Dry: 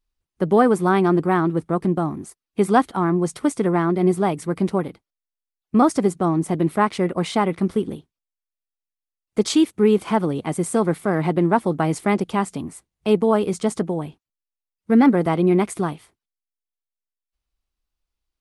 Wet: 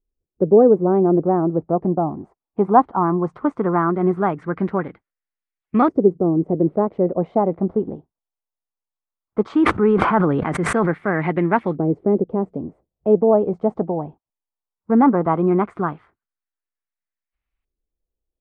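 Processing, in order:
auto-filter low-pass saw up 0.17 Hz 420–2,300 Hz
0:09.49–0:10.91: level that may fall only so fast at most 25 dB per second
level −1 dB

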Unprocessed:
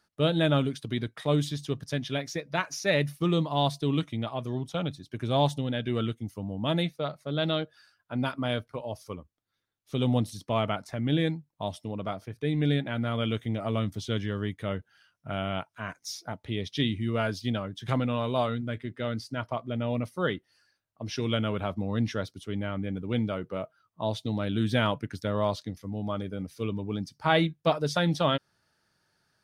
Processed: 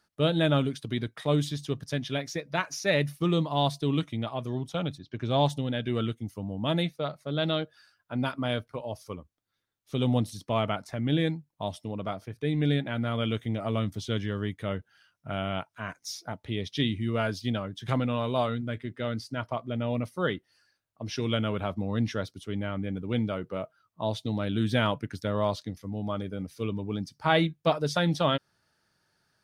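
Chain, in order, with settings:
0:04.97–0:05.48: low-pass filter 4,200 Hz → 9,700 Hz 24 dB per octave

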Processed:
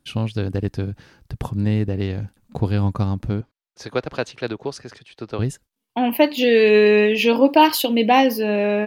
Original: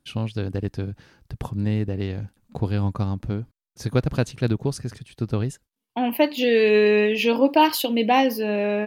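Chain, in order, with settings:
0:03.41–0:05.39: three-way crossover with the lows and the highs turned down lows −17 dB, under 350 Hz, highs −17 dB, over 6,100 Hz
level +3.5 dB

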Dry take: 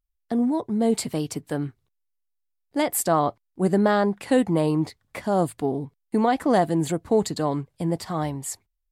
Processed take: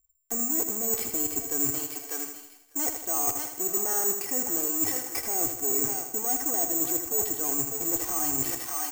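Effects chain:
in parallel at −11 dB: fuzz pedal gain 40 dB, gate −43 dBFS
on the sum: Butterworth low-pass 3,100 Hz 36 dB per octave
parametric band 150 Hz −13 dB 0.25 octaves
comb filter 2.6 ms, depth 76%
feedback echo with a high-pass in the loop 597 ms, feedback 29%, high-pass 1,100 Hz, level −9 dB
reversed playback
downward compressor 6 to 1, threshold −32 dBFS, peak gain reduction 20 dB
reversed playback
bad sample-rate conversion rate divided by 6×, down none, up zero stuff
feedback echo at a low word length 80 ms, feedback 55%, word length 9 bits, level −8 dB
level −2.5 dB

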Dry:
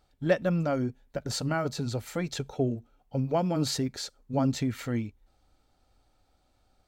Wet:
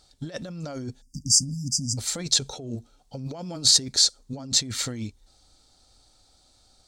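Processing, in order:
time-frequency box erased 0:01.02–0:01.98, 300–4,700 Hz
compressor whose output falls as the input rises −33 dBFS, ratio −1
flat-topped bell 5,900 Hz +14.5 dB

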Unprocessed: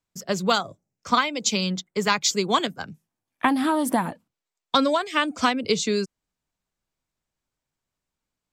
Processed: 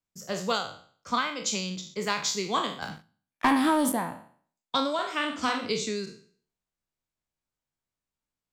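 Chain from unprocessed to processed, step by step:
peak hold with a decay on every bin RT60 0.49 s
0:02.82–0:03.92: leveller curve on the samples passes 2
0:04.94–0:05.73: double-tracking delay 47 ms −5 dB
level −8.5 dB

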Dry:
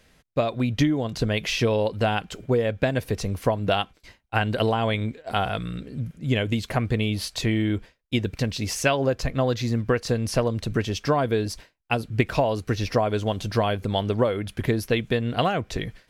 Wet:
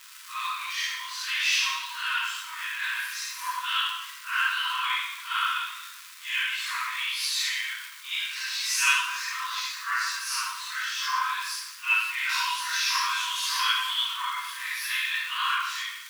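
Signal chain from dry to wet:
random phases in long frames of 200 ms
0:12.29–0:14.08: high-shelf EQ 3,000 Hz +10.5 dB
surface crackle 290 per second −31 dBFS
linear-phase brick-wall high-pass 940 Hz
dense smooth reverb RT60 0.92 s, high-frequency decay 0.85×, DRR −3 dB

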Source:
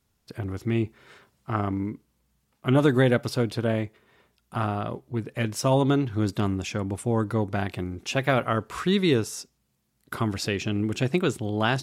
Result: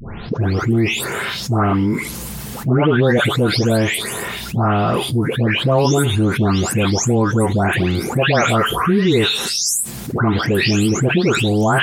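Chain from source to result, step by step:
every frequency bin delayed by itself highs late, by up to 425 ms
envelope flattener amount 70%
level +5 dB

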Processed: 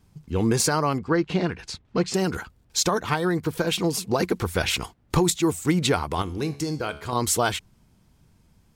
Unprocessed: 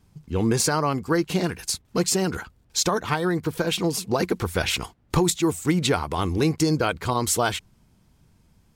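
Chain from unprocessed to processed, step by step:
0:00.98–0:02.14: low-pass filter 3,600 Hz 12 dB per octave
0:06.22–0:07.13: tuned comb filter 71 Hz, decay 0.63 s, harmonics all, mix 60%

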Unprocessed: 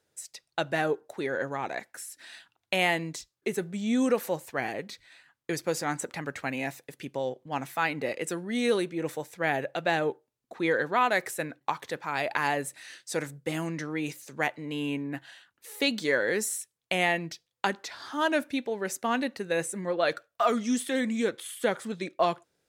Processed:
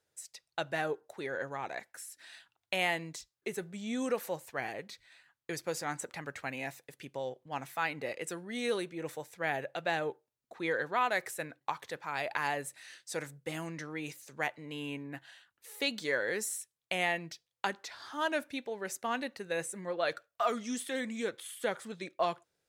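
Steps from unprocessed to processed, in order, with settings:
parametric band 250 Hz −5 dB 1.4 octaves
level −5 dB

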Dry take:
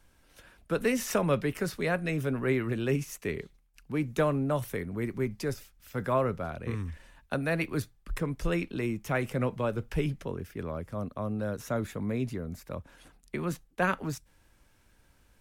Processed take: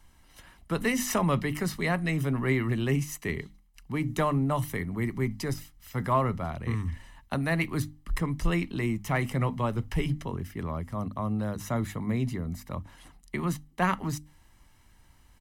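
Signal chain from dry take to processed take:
mains-hum notches 50/100/150/200/250/300 Hz
comb filter 1 ms, depth 54%
in parallel at −10 dB: soft clipping −23 dBFS, distortion −16 dB

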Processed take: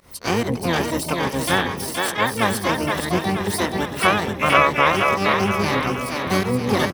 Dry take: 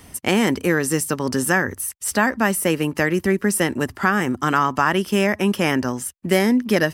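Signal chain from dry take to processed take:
parametric band 1,100 Hz +10.5 dB 0.49 octaves
fake sidechain pumping 140 BPM, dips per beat 1, −24 dB, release 120 ms
on a send: echo with a time of its own for lows and highs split 310 Hz, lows 137 ms, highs 474 ms, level −3.5 dB
on the sum: pitch-shifted copies added −12 semitones −4 dB, +12 semitones −3 dB
level −6.5 dB

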